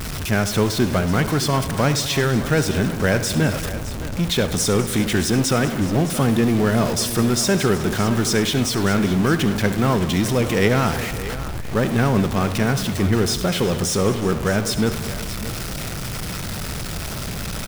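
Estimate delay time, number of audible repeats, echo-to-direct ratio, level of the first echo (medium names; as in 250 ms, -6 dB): 70 ms, 5, -8.5 dB, -14.5 dB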